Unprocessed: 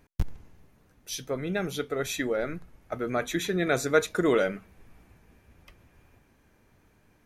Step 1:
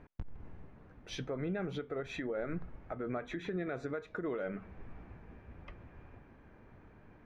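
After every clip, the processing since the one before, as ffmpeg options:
ffmpeg -i in.wav -af "lowpass=1800,acompressor=threshold=-34dB:ratio=4,alimiter=level_in=10dB:limit=-24dB:level=0:latency=1:release=210,volume=-10dB,volume=5.5dB" out.wav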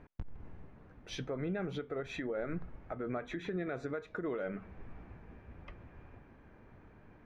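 ffmpeg -i in.wav -af anull out.wav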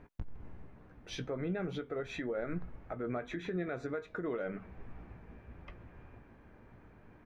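ffmpeg -i in.wav -filter_complex "[0:a]asplit=2[link_01][link_02];[link_02]adelay=17,volume=-12dB[link_03];[link_01][link_03]amix=inputs=2:normalize=0" out.wav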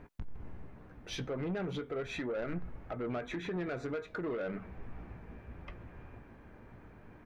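ffmpeg -i in.wav -af "asoftclip=type=tanh:threshold=-34.5dB,volume=3.5dB" out.wav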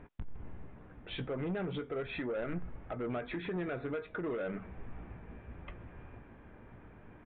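ffmpeg -i in.wav -af "aresample=8000,aresample=44100" out.wav

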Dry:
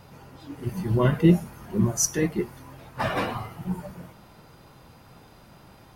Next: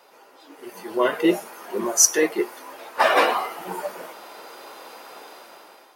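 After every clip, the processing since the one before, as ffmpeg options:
ffmpeg -i in.wav -af "highpass=frequency=380:width=0.5412,highpass=frequency=380:width=1.3066,dynaudnorm=framelen=410:gausssize=5:maxgain=13.5dB" out.wav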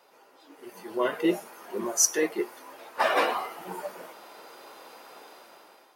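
ffmpeg -i in.wav -af "lowshelf=frequency=190:gain=4,volume=-6.5dB" out.wav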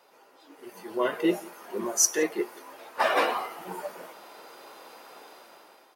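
ffmpeg -i in.wav -filter_complex "[0:a]asplit=2[link_01][link_02];[link_02]adelay=174.9,volume=-23dB,highshelf=frequency=4000:gain=-3.94[link_03];[link_01][link_03]amix=inputs=2:normalize=0" out.wav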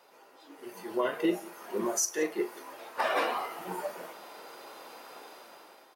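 ffmpeg -i in.wav -filter_complex "[0:a]asplit=2[link_01][link_02];[link_02]adelay=39,volume=-12.5dB[link_03];[link_01][link_03]amix=inputs=2:normalize=0,alimiter=limit=-18dB:level=0:latency=1:release=372" out.wav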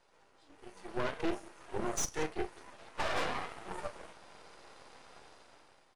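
ffmpeg -i in.wav -af "aeval=exprs='max(val(0),0)':channel_layout=same,aresample=22050,aresample=44100,aeval=exprs='0.133*(cos(1*acos(clip(val(0)/0.133,-1,1)))-cos(1*PI/2))+0.0266*(cos(6*acos(clip(val(0)/0.133,-1,1)))-cos(6*PI/2))':channel_layout=same,volume=-5.5dB" out.wav

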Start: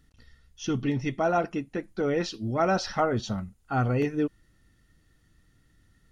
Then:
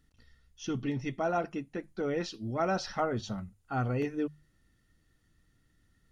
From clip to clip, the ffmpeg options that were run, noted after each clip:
ffmpeg -i in.wav -af "bandreject=frequency=50:width_type=h:width=6,bandreject=frequency=100:width_type=h:width=6,bandreject=frequency=150:width_type=h:width=6,volume=-5.5dB" out.wav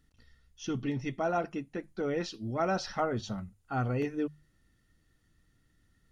ffmpeg -i in.wav -af anull out.wav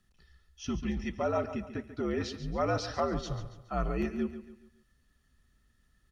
ffmpeg -i in.wav -af "afreqshift=-75,aecho=1:1:140|280|420|560:0.251|0.103|0.0422|0.0173" out.wav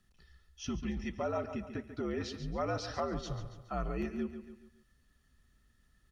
ffmpeg -i in.wav -af "acompressor=threshold=-39dB:ratio=1.5" out.wav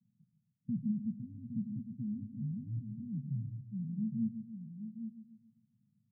ffmpeg -i in.wav -af "asuperpass=centerf=160:order=12:qfactor=1.2,aecho=1:1:811:0.376,volume=4.5dB" out.wav

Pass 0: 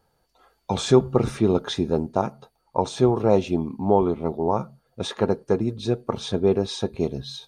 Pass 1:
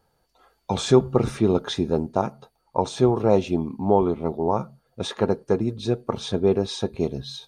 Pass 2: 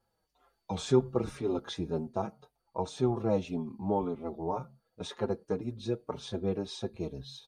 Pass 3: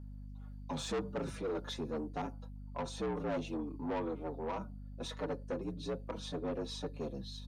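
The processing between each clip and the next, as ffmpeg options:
ffmpeg -i in.wav -af anull out.wav
ffmpeg -i in.wav -filter_complex "[0:a]asplit=2[link_01][link_02];[link_02]adelay=5.4,afreqshift=-1.9[link_03];[link_01][link_03]amix=inputs=2:normalize=1,volume=-7.5dB" out.wav
ffmpeg -i in.wav -af "afreqshift=63,aeval=exprs='val(0)+0.00631*(sin(2*PI*50*n/s)+sin(2*PI*2*50*n/s)/2+sin(2*PI*3*50*n/s)/3+sin(2*PI*4*50*n/s)/4+sin(2*PI*5*50*n/s)/5)':channel_layout=same,asoftclip=type=tanh:threshold=-30.5dB,volume=-1.5dB" out.wav

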